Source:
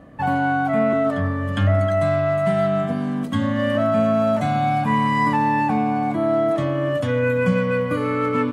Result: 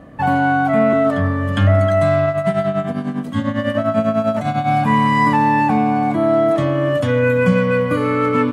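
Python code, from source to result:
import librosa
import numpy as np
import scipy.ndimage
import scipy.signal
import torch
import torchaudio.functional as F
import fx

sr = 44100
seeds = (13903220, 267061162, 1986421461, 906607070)

y = fx.tremolo_shape(x, sr, shape='triangle', hz=10.0, depth_pct=75, at=(2.26, 4.69))
y = y * 10.0 ** (4.5 / 20.0)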